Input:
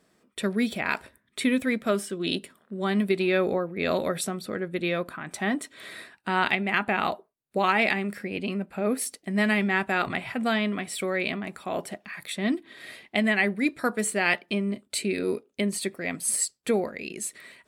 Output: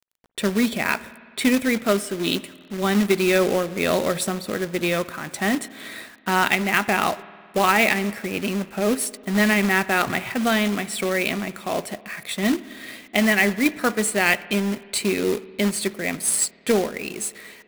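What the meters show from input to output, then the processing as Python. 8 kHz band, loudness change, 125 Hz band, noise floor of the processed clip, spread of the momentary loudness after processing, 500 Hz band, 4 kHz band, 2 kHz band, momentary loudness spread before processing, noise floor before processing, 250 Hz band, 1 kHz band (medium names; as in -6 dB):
+6.0 dB, +5.0 dB, +5.0 dB, -48 dBFS, 10 LU, +5.0 dB, +6.0 dB, +5.0 dB, 10 LU, -70 dBFS, +5.0 dB, +5.0 dB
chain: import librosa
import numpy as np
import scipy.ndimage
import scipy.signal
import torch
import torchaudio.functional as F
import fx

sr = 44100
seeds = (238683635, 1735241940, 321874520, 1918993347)

y = fx.quant_companded(x, sr, bits=4)
y = fx.rev_spring(y, sr, rt60_s=2.1, pass_ms=(53,), chirp_ms=60, drr_db=17.5)
y = y * 10.0 ** (4.5 / 20.0)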